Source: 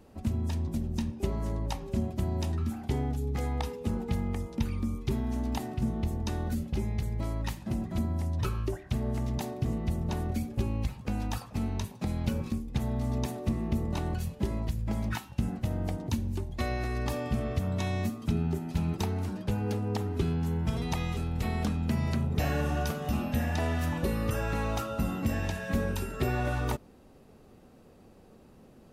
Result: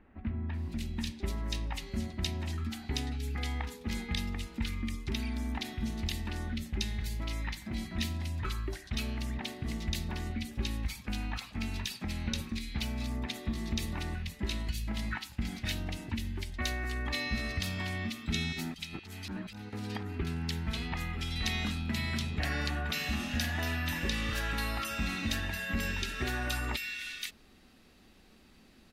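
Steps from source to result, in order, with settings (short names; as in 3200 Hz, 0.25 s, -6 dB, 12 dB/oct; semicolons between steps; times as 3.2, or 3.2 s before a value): graphic EQ 125/500/1000/2000/4000 Hz -11/-11/-4/+9/+8 dB; 18.52–19.73 negative-ratio compressor -41 dBFS, ratio -0.5; bands offset in time lows, highs 0.54 s, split 2000 Hz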